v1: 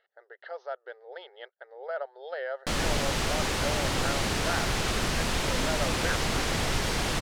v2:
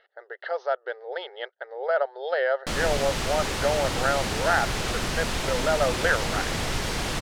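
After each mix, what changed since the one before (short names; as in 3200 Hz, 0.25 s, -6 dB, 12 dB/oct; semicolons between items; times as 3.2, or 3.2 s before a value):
speech +10.0 dB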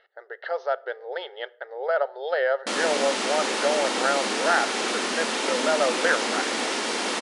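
background: add brick-wall FIR band-pass 200–11000 Hz; reverb: on, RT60 0.55 s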